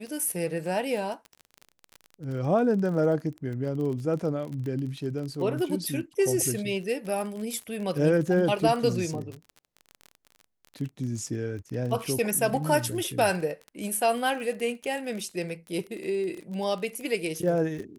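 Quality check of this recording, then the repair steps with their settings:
crackle 28 per s -33 dBFS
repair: de-click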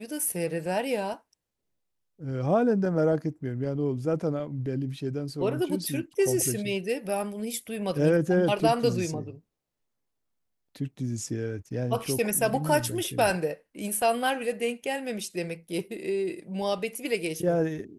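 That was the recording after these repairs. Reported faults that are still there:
nothing left

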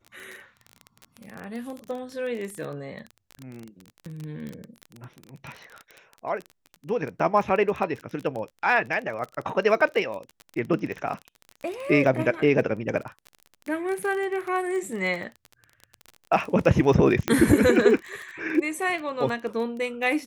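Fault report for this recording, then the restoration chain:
crackle 22 per s -30 dBFS
17.28 s: pop -8 dBFS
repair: de-click

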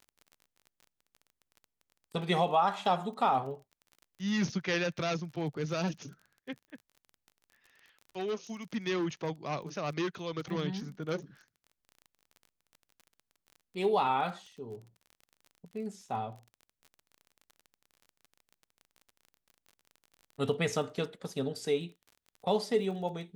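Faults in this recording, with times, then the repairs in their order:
crackle 28 per s -43 dBFS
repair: de-click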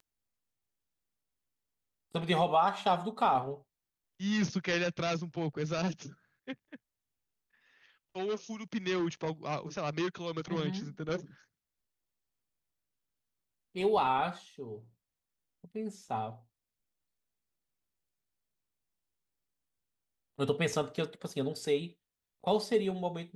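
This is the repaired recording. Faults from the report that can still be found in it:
nothing left

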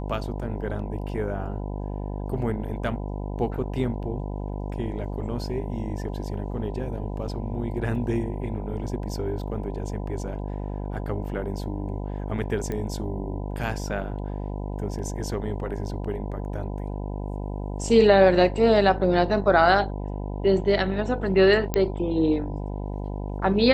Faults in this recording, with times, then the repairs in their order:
buzz 50 Hz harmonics 20 -31 dBFS
12.72 s: pop -18 dBFS
21.74 s: pop -10 dBFS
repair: de-click; de-hum 50 Hz, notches 20

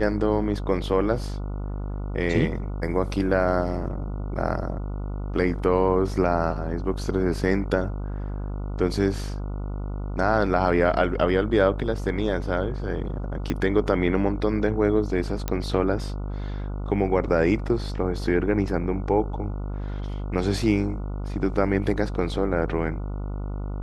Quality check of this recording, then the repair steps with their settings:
buzz 50 Hz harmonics 29 -30 dBFS
13.50 s: pop -13 dBFS
15.48 s: pop -11 dBFS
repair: de-click; de-hum 50 Hz, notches 29

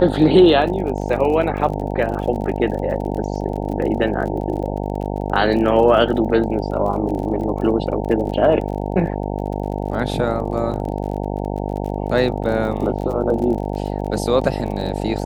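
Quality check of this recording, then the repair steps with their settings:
buzz 50 Hz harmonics 18 -24 dBFS
crackle 37 per s -28 dBFS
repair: de-click; de-hum 50 Hz, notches 18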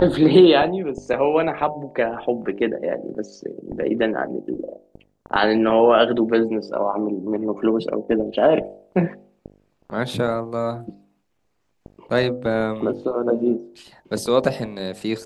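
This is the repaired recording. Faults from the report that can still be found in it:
nothing left

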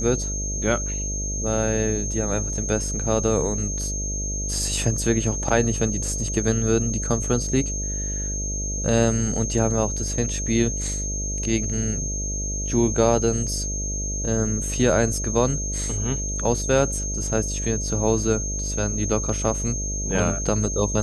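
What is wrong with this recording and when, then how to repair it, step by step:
buzz 50 Hz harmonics 13 -29 dBFS
whine 6.4 kHz -28 dBFS
5.49 s: dropout 4.9 ms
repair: de-hum 50 Hz, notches 13; band-stop 6.4 kHz, Q 30; interpolate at 5.49 s, 4.9 ms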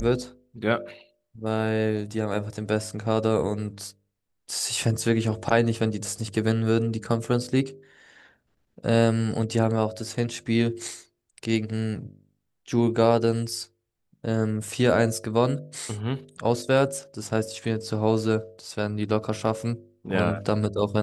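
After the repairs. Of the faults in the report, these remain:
nothing left

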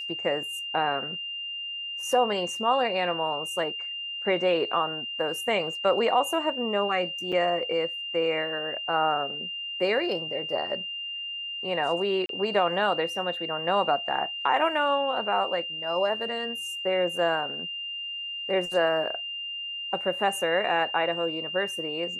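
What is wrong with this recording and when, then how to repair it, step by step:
whine 2.8 kHz -32 dBFS
7.32–7.33 s: dropout 5.7 ms
12.26–12.29 s: dropout 32 ms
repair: band-stop 2.8 kHz, Q 30; interpolate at 7.32 s, 5.7 ms; interpolate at 12.26 s, 32 ms

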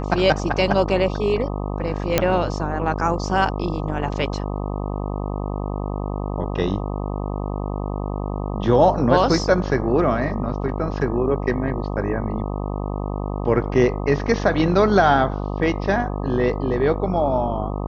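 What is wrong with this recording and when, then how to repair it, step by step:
buzz 50 Hz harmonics 25 -26 dBFS
2.18 s: pop -1 dBFS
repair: de-click; de-hum 50 Hz, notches 25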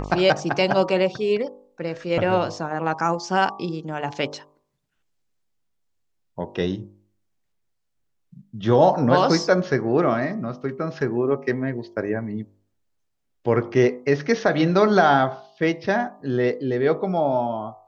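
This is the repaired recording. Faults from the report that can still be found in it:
nothing left

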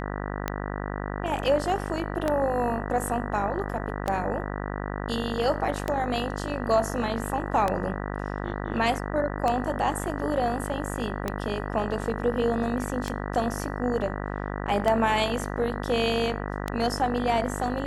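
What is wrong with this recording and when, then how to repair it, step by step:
buzz 50 Hz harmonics 39 -32 dBFS
tick 33 1/3 rpm -12 dBFS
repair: de-click; de-hum 50 Hz, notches 39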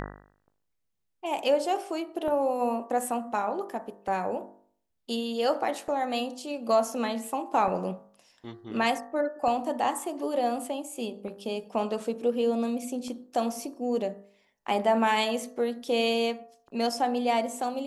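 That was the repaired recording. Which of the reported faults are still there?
nothing left

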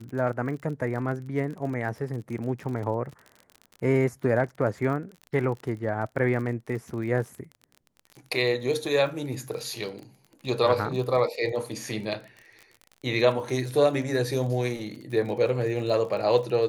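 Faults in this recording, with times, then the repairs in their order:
crackle 40 per s -35 dBFS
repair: de-click

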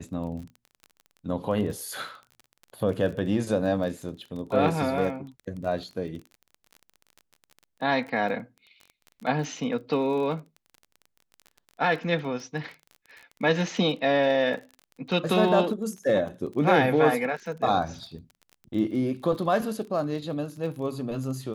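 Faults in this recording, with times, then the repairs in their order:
crackle 28 per s -36 dBFS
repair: de-click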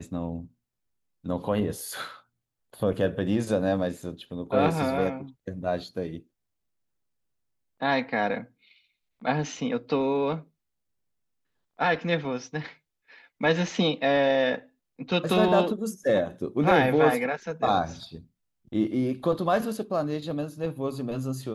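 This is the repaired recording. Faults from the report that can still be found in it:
nothing left

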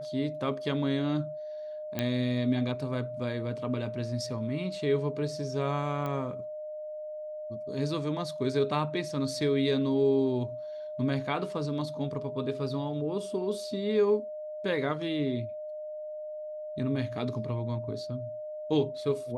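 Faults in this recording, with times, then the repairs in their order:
whine 610 Hz -36 dBFS
1.99 s: pop -15 dBFS
6.06 s: pop -22 dBFS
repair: de-click; band-stop 610 Hz, Q 30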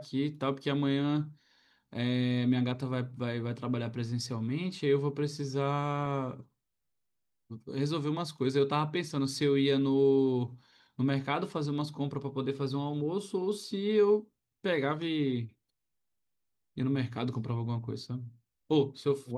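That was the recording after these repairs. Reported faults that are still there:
nothing left

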